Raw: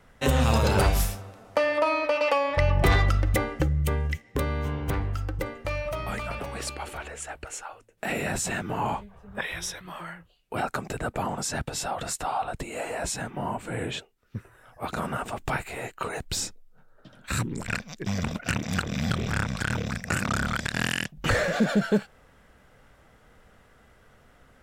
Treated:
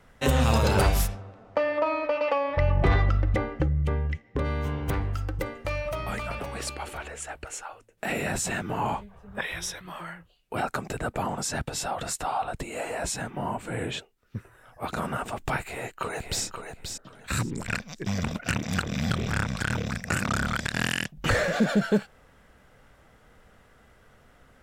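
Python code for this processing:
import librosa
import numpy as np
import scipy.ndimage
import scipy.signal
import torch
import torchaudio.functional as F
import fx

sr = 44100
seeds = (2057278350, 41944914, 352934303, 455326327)

y = fx.spacing_loss(x, sr, db_at_10k=22, at=(1.06, 4.44), fade=0.02)
y = fx.echo_throw(y, sr, start_s=15.64, length_s=0.8, ms=530, feedback_pct=20, wet_db=-7.0)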